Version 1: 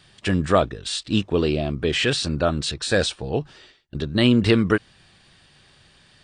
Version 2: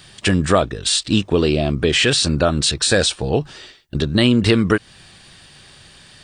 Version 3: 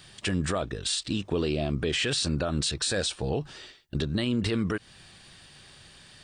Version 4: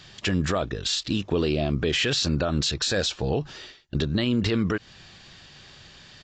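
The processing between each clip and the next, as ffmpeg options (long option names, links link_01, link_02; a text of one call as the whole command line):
ffmpeg -i in.wav -af "highshelf=frequency=7000:gain=9.5,acompressor=threshold=-23dB:ratio=2,volume=8dB" out.wav
ffmpeg -i in.wav -af "alimiter=limit=-12dB:level=0:latency=1:release=83,volume=-6.5dB" out.wav
ffmpeg -i in.wav -af "aresample=16000,aresample=44100,volume=3.5dB" out.wav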